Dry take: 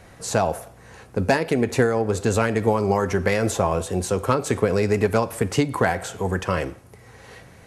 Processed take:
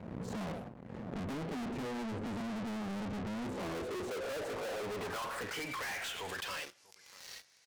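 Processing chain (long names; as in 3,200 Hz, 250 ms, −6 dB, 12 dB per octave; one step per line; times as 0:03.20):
pitch shifter gated in a rhythm +1 semitone, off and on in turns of 600 ms
band-pass filter sweep 210 Hz → 5,100 Hz, 0:03.31–0:06.78
in parallel at −1.5 dB: brickwall limiter −25 dBFS, peak gain reduction 11 dB
on the sum: slap from a distant wall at 110 metres, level −27 dB
leveller curve on the samples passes 3
high-pass filter 46 Hz 12 dB per octave
soft clipping −36 dBFS, distortion −4 dB
background raised ahead of every attack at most 40 dB per second
level −2 dB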